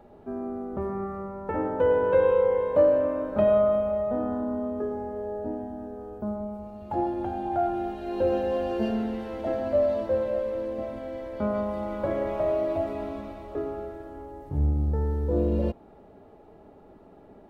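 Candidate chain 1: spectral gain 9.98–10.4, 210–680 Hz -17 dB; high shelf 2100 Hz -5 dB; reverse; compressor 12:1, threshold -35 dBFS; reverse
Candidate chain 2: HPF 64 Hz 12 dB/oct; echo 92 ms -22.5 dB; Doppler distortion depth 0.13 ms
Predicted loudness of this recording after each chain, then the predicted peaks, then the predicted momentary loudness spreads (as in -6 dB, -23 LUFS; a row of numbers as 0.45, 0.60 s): -39.5, -27.5 LUFS; -27.0, -10.5 dBFS; 5, 15 LU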